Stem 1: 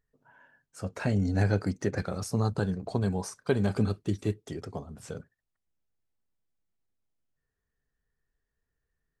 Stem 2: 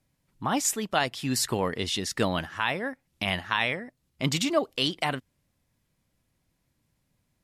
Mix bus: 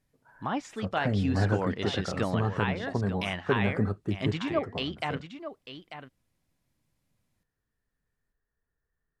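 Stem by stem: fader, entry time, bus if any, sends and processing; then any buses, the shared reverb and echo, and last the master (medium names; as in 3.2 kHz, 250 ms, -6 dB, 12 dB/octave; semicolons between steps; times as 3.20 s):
-1.0 dB, 0.00 s, no send, no echo send, resonant high shelf 2.3 kHz -12 dB, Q 1.5
-4.0 dB, 0.00 s, no send, echo send -11 dB, de-esser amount 40%; low-pass that closes with the level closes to 2.4 kHz, closed at -23 dBFS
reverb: none
echo: delay 893 ms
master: none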